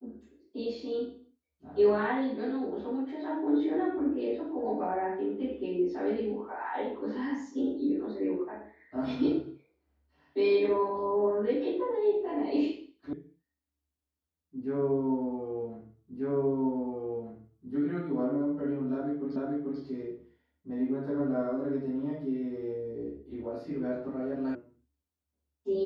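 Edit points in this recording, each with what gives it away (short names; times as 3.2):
13.13 sound cut off
16.17 repeat of the last 1.54 s
19.36 repeat of the last 0.44 s
24.55 sound cut off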